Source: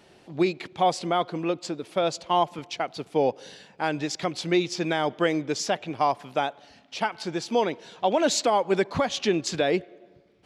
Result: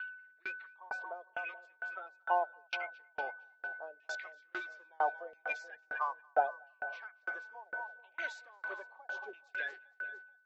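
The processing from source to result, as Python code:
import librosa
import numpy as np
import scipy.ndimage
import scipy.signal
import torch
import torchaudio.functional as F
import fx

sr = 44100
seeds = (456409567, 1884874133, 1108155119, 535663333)

p1 = fx.spec_quant(x, sr, step_db=30)
p2 = scipy.signal.sosfilt(scipy.signal.butter(4, 380.0, 'highpass', fs=sr, output='sos'), p1)
p3 = fx.filter_lfo_bandpass(p2, sr, shape='saw_down', hz=0.75, low_hz=520.0, high_hz=2800.0, q=5.6)
p4 = p3 + 10.0 ** (-42.0 / 20.0) * np.sin(2.0 * np.pi * 1500.0 * np.arange(len(p3)) / sr)
p5 = p4 + fx.echo_split(p4, sr, split_hz=650.0, low_ms=430, high_ms=230, feedback_pct=52, wet_db=-12.5, dry=0)
p6 = fx.tremolo_decay(p5, sr, direction='decaying', hz=2.2, depth_db=36)
y = p6 * librosa.db_to_amplitude(6.0)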